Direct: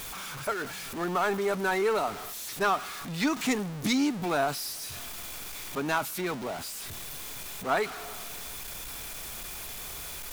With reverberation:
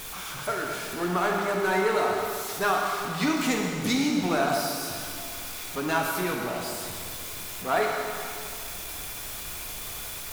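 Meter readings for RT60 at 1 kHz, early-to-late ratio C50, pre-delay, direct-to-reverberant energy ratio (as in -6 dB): 2.4 s, 1.5 dB, 6 ms, -0.5 dB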